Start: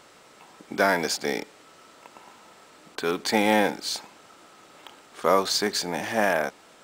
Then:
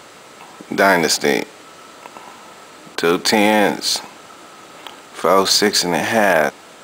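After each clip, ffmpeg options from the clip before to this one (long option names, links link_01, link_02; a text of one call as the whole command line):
ffmpeg -i in.wav -af "highpass=52,bandreject=frequency=5400:width=18,alimiter=level_in=12.5dB:limit=-1dB:release=50:level=0:latency=1,volume=-1dB" out.wav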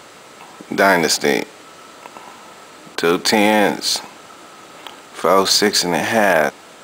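ffmpeg -i in.wav -af anull out.wav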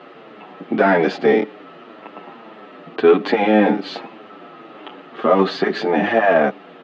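ffmpeg -i in.wav -filter_complex "[0:a]asplit=2[link_01][link_02];[link_02]asoftclip=type=hard:threshold=-12dB,volume=-3dB[link_03];[link_01][link_03]amix=inputs=2:normalize=0,highpass=frequency=170:width=0.5412,highpass=frequency=170:width=1.3066,equalizer=frequency=550:width_type=q:width=4:gain=-4,equalizer=frequency=950:width_type=q:width=4:gain=-10,equalizer=frequency=1500:width_type=q:width=4:gain=-8,equalizer=frequency=2200:width_type=q:width=4:gain=-9,lowpass=frequency=2500:width=0.5412,lowpass=frequency=2500:width=1.3066,asplit=2[link_04][link_05];[link_05]adelay=8,afreqshift=-1.8[link_06];[link_04][link_06]amix=inputs=2:normalize=1,volume=3.5dB" out.wav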